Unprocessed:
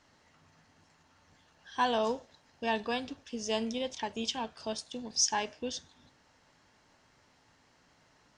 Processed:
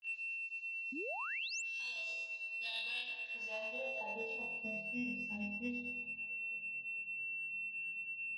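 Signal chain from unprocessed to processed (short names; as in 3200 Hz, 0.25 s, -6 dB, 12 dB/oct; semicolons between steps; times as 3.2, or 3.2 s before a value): bell 2100 Hz +7 dB 0.79 oct; band-limited delay 0.22 s, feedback 76%, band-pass 790 Hz, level -16.5 dB; vibrato 0.51 Hz 10 cents; EQ curve 100 Hz 0 dB, 210 Hz -5 dB, 350 Hz -30 dB, 510 Hz -8 dB, 1200 Hz -19 dB, 2300 Hz -22 dB, 4100 Hz -1 dB, 6200 Hz -14 dB, 9500 Hz -9 dB; compressor, threshold -40 dBFS, peak gain reduction 7 dB; band-pass sweep 6300 Hz -> 230 Hz, 2.36–4.75; whine 2700 Hz -49 dBFS; flutter echo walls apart 4.2 m, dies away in 0.92 s; grains 0.217 s, grains 9/s, spray 25 ms, pitch spread up and down by 0 st; soft clip -38 dBFS, distortion -26 dB; painted sound rise, 0.92–1.62, 240–7900 Hz -52 dBFS; gain +7.5 dB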